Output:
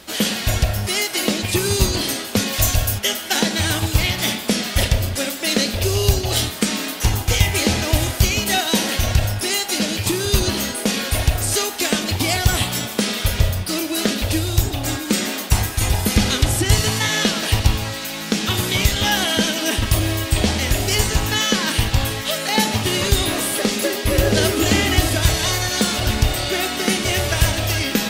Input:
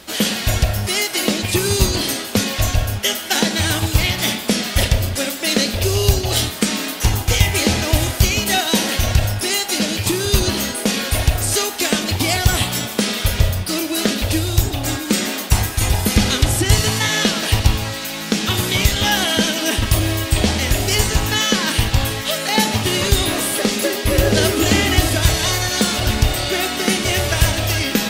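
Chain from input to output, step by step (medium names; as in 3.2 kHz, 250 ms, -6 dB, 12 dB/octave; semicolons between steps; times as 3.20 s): 2.52–2.98 s: treble shelf 7 kHz -> 4.8 kHz +11.5 dB; trim -1.5 dB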